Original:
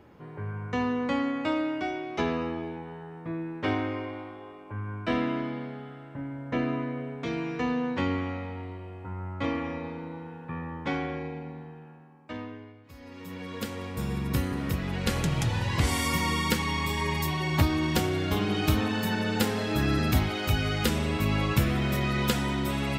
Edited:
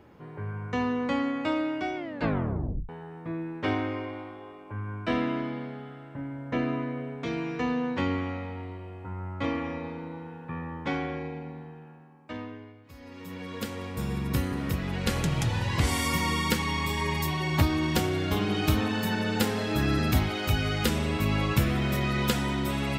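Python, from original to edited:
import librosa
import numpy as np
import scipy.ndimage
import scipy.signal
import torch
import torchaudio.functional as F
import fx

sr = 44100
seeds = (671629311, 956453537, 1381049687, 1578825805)

y = fx.edit(x, sr, fx.tape_stop(start_s=1.96, length_s=0.93), tone=tone)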